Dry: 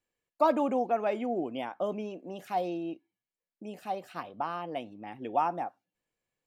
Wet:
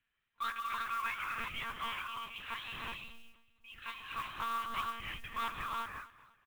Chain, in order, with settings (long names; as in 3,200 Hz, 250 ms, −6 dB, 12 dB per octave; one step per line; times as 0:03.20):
brick-wall band-stop 170–980 Hz
in parallel at −2.5 dB: downward compressor, threshold −39 dBFS, peak gain reduction 10.5 dB
on the sum: gain into a clipping stage and back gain 34.5 dB
on a send: repeating echo 246 ms, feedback 37%, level −18 dB
on the sum: reverb whose tail is shaped and stops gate 400 ms rising, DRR 0 dB
one-pitch LPC vocoder at 8 kHz 230 Hz
noise that follows the level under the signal 20 dB
level +1 dB